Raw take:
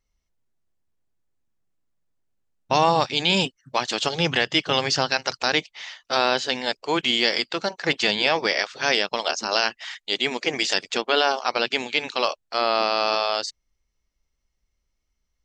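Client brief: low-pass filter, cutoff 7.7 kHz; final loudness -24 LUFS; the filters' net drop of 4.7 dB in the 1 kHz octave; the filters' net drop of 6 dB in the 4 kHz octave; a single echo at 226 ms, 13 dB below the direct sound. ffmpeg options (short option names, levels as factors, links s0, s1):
-af "lowpass=7700,equalizer=f=1000:t=o:g=-6,equalizer=f=4000:t=o:g=-7.5,aecho=1:1:226:0.224,volume=1.26"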